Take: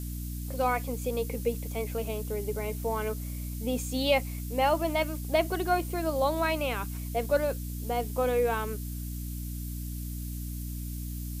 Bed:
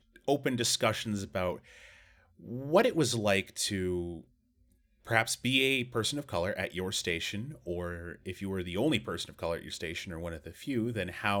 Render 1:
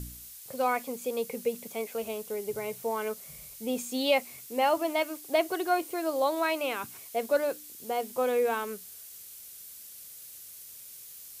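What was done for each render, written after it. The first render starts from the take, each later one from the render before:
hum removal 60 Hz, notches 5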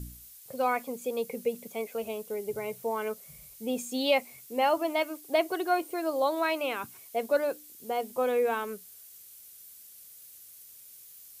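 broadband denoise 6 dB, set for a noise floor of −47 dBFS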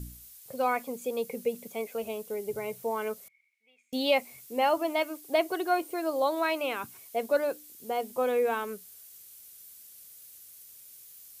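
0:03.28–0:03.93: resonant band-pass 2,200 Hz, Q 19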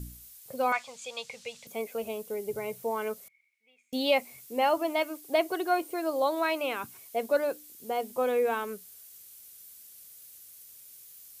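0:00.72–0:01.67: drawn EQ curve 130 Hz 0 dB, 190 Hz −15 dB, 330 Hz −25 dB, 570 Hz −6 dB, 1,000 Hz +2 dB, 1,900 Hz +4 dB, 3,700 Hz +10 dB, 7,500 Hz +4 dB, 14,000 Hz −23 dB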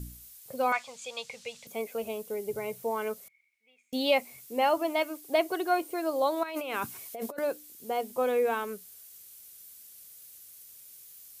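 0:06.43–0:07.39: compressor whose output falls as the input rises −36 dBFS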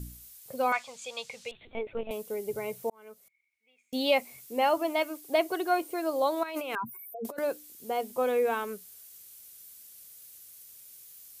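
0:01.51–0:02.11: linear-prediction vocoder at 8 kHz pitch kept
0:02.90–0:03.99: fade in
0:06.75–0:07.25: expanding power law on the bin magnitudes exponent 3.7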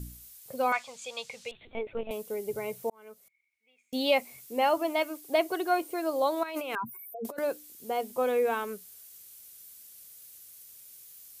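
no processing that can be heard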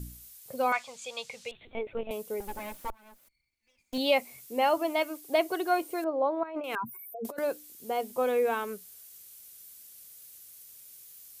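0:02.40–0:03.98: lower of the sound and its delayed copy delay 3.4 ms
0:06.04–0:06.64: low-pass filter 1,200 Hz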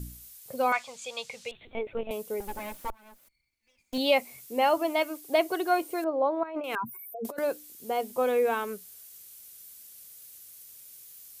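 level +1.5 dB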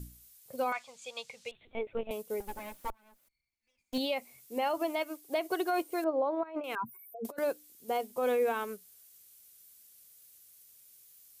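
brickwall limiter −21.5 dBFS, peak gain reduction 10 dB
expander for the loud parts 1.5 to 1, over −44 dBFS

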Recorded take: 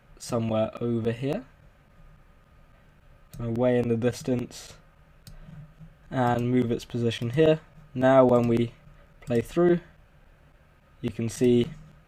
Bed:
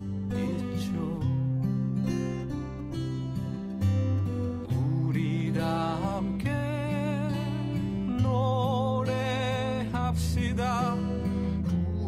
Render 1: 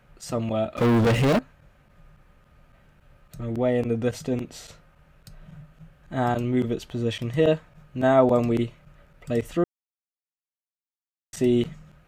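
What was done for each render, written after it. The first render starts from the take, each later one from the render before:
0:00.77–0:01.39: leveller curve on the samples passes 5
0:09.64–0:11.33: silence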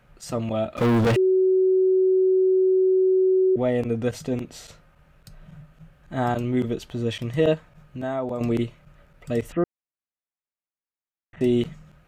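0:01.16–0:03.56: beep over 375 Hz −15.5 dBFS
0:07.54–0:08.41: downward compressor 2 to 1, threshold −32 dBFS
0:09.52–0:11.41: inverse Chebyshev low-pass filter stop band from 4,700 Hz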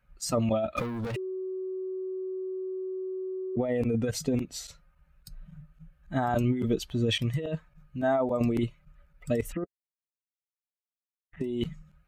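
spectral dynamics exaggerated over time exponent 1.5
compressor whose output falls as the input rises −30 dBFS, ratio −1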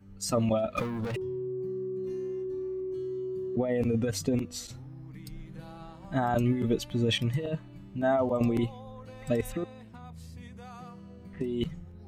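mix in bed −18 dB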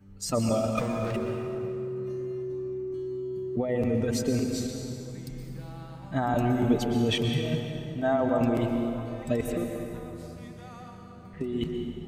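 dense smooth reverb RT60 3 s, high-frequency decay 0.65×, pre-delay 105 ms, DRR 2.5 dB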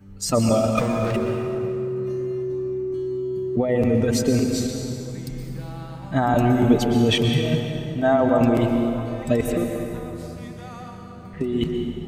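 level +7 dB

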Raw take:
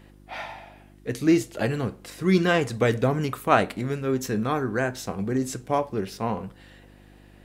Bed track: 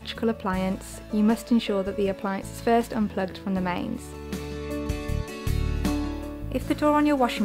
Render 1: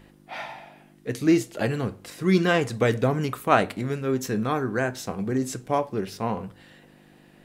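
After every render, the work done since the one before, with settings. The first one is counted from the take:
hum removal 50 Hz, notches 2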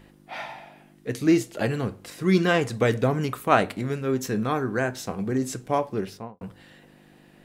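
0:06.01–0:06.41: fade out and dull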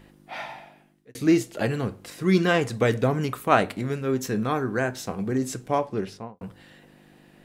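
0:00.55–0:01.15: fade out
0:05.70–0:06.38: low-pass filter 9,900 Hz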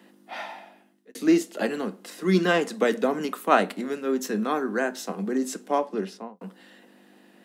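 Butterworth high-pass 180 Hz 72 dB per octave
notch filter 2,300 Hz, Q 14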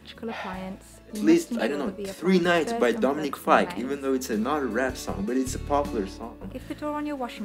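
mix in bed track −9.5 dB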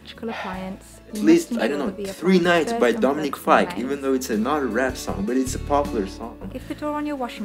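level +4 dB
brickwall limiter −3 dBFS, peak gain reduction 1.5 dB

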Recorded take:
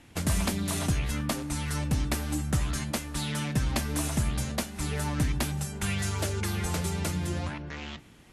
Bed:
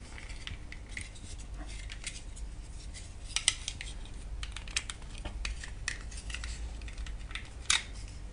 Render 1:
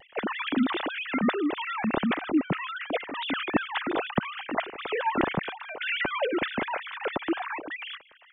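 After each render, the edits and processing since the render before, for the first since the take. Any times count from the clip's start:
three sine waves on the formant tracks
pitch vibrato 0.39 Hz 12 cents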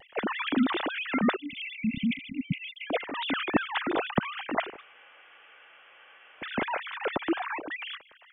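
0:01.36–0:02.87: linear-phase brick-wall band-stop 280–2,000 Hz
0:04.76–0:06.46: fill with room tone, crossfade 0.16 s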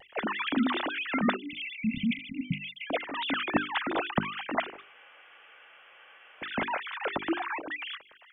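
mains-hum notches 50/100/150/200/250/300/350/400 Hz
dynamic equaliser 450 Hz, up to −4 dB, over −41 dBFS, Q 2.2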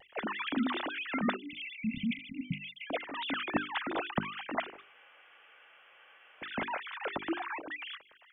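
level −4.5 dB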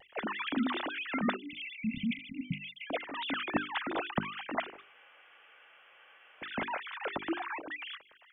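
no processing that can be heard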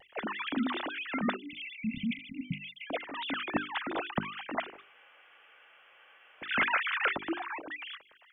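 0:06.49–0:07.13: flat-topped bell 1,900 Hz +11.5 dB

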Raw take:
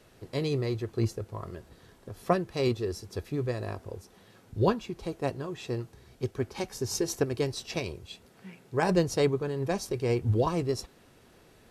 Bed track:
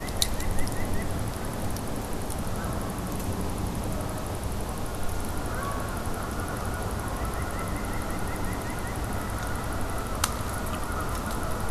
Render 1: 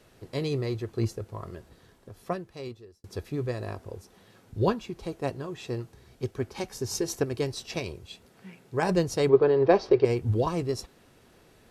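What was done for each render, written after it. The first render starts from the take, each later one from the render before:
0:01.57–0:03.04: fade out
0:09.29–0:10.05: drawn EQ curve 230 Hz 0 dB, 380 Hz +13 dB, 1,300 Hz +8 dB, 4,900 Hz +1 dB, 7,700 Hz −24 dB, 11,000 Hz −30 dB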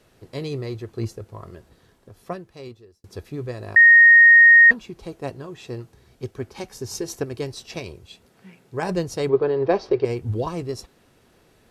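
0:03.76–0:04.71: beep over 1,860 Hz −7 dBFS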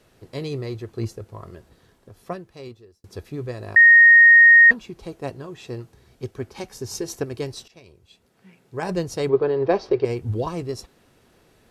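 0:07.68–0:09.10: fade in, from −21.5 dB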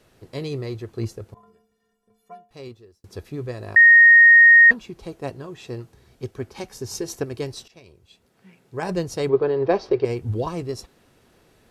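0:01.34–0:02.51: stiff-string resonator 210 Hz, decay 0.41 s, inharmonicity 0.03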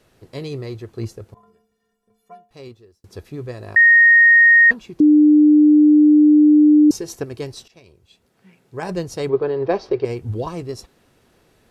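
0:05.00–0:06.91: beep over 300 Hz −7.5 dBFS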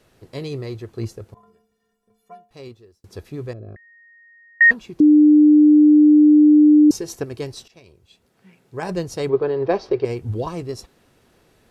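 0:03.53–0:04.61: moving average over 47 samples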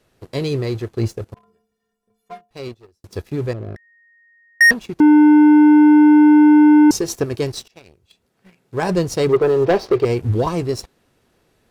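leveller curve on the samples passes 2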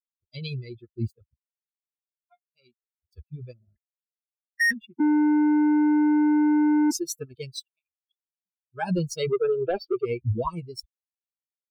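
spectral dynamics exaggerated over time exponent 3
brickwall limiter −18 dBFS, peak gain reduction 11 dB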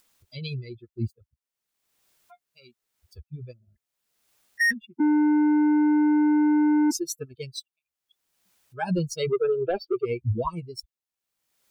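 upward compression, threshold −43 dBFS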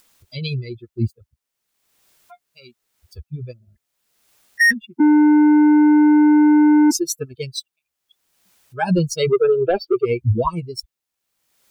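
level +8 dB

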